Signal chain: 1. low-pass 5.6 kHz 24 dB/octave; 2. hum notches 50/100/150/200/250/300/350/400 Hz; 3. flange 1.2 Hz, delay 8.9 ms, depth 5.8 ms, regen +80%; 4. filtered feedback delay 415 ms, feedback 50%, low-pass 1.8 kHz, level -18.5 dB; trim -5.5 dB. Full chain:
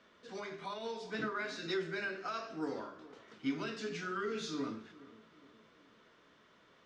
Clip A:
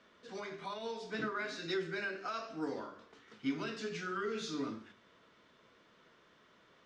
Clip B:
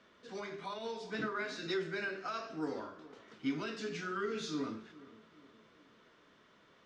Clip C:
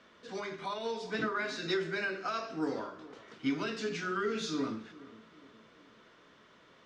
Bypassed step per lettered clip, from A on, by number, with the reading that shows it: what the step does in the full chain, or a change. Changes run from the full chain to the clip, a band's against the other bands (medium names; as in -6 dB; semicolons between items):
4, echo-to-direct -20.0 dB to none; 2, momentary loudness spread change +4 LU; 3, momentary loudness spread change +4 LU